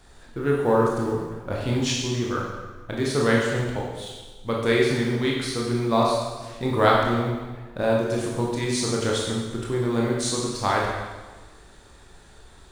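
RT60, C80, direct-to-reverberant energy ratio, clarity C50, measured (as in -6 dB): 1.3 s, 3.0 dB, -3.5 dB, 1.0 dB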